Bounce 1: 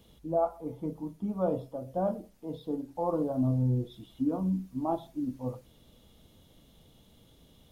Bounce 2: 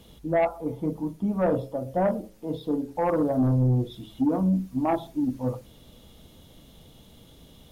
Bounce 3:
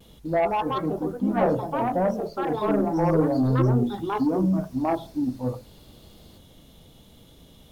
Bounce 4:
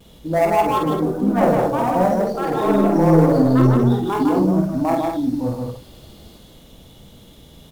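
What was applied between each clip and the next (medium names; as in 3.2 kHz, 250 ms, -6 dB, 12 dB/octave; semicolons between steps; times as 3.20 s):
de-hum 107.3 Hz, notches 5; sine folder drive 4 dB, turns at -17.5 dBFS
ever faster or slower copies 248 ms, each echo +4 st, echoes 2; vibrato 0.32 Hz 15 cents
dead-time distortion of 0.051 ms; on a send: loudspeakers at several distances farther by 17 m -4 dB, 53 m -3 dB, 74 m -8 dB; on the sum: trim +3.5 dB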